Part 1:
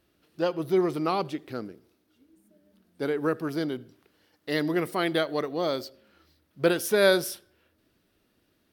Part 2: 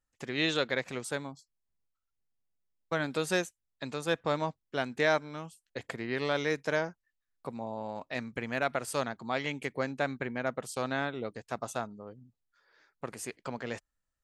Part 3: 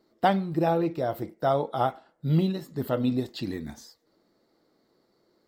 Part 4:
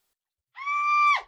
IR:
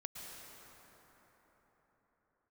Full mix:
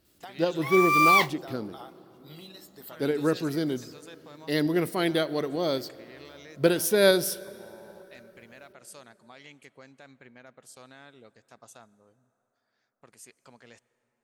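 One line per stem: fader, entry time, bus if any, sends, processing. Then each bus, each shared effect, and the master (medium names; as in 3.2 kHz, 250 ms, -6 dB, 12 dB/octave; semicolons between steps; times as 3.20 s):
-0.5 dB, 0.00 s, send -15 dB, tilt shelf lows +4.5 dB, about 650 Hz; band-stop 1.2 kHz, Q 17; tremolo saw up 4.5 Hz, depth 30%
-17.0 dB, 0.00 s, send -16 dB, peak limiter -21.5 dBFS, peak gain reduction 8.5 dB
-9.0 dB, 0.00 s, send -11 dB, high-pass 1.1 kHz 6 dB/octave; compression 5:1, threshold -36 dBFS, peak gain reduction 13.5 dB
-1.0 dB, 0.05 s, no send, modulation noise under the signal 26 dB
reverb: on, RT60 4.5 s, pre-delay 103 ms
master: treble shelf 2.8 kHz +10 dB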